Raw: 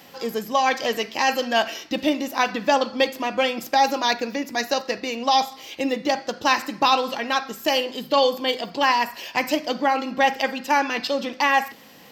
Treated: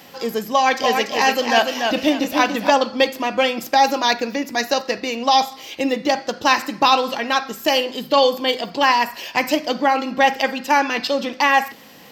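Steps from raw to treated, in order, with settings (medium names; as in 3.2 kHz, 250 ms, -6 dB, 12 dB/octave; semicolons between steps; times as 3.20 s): 0.52–2.70 s: modulated delay 289 ms, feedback 31%, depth 85 cents, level -5 dB; trim +3.5 dB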